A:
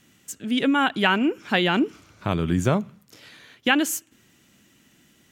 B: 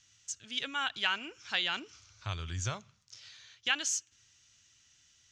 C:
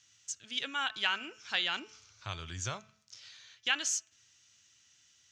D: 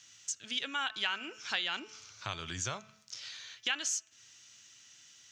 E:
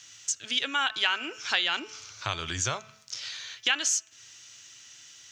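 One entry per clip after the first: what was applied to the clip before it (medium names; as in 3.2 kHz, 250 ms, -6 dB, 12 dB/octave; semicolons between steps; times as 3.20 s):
FFT filter 110 Hz 0 dB, 180 Hz -20 dB, 290 Hz -20 dB, 1.4 kHz -3 dB, 2 kHz -3 dB, 6.2 kHz +11 dB, 13 kHz -27 dB; trim -7.5 dB
high-pass 160 Hz 6 dB/octave; de-hum 217.3 Hz, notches 13
high-pass 130 Hz 12 dB/octave; compression 2:1, threshold -45 dBFS, peak gain reduction 11.5 dB; trim +7.5 dB
peaking EQ 200 Hz -12 dB 0.3 oct; trim +7.5 dB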